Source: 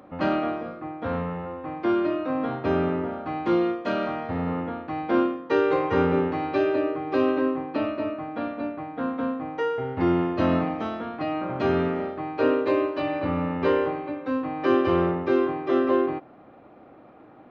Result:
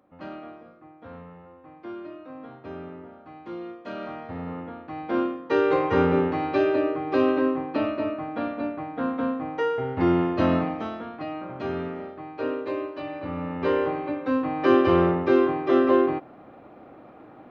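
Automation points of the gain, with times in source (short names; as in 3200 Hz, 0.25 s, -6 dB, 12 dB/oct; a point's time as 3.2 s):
3.55 s -14.5 dB
4.12 s -6.5 dB
4.74 s -6.5 dB
5.72 s +1 dB
10.42 s +1 dB
11.55 s -7 dB
13.22 s -7 dB
14.07 s +2.5 dB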